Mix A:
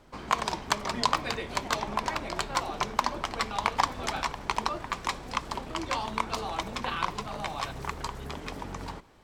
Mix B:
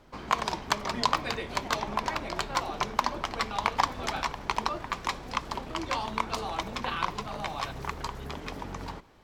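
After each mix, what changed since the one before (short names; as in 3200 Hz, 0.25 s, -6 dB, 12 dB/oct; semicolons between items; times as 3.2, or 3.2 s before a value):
background: add bell 8600 Hz -5.5 dB 0.5 oct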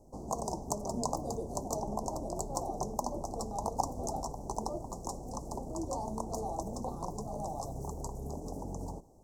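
background: add bell 8600 Hz +5.5 dB 0.5 oct; master: add elliptic band-stop 770–6300 Hz, stop band 50 dB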